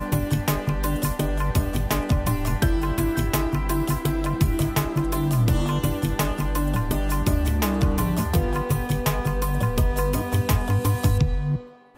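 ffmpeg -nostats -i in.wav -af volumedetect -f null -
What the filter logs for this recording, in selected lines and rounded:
mean_volume: -22.2 dB
max_volume: -10.4 dB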